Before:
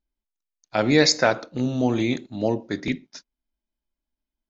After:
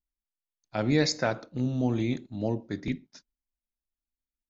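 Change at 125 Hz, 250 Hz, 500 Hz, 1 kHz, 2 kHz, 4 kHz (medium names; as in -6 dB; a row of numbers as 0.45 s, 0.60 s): -1.5 dB, -5.0 dB, -8.0 dB, -8.5 dB, -9.5 dB, -10.0 dB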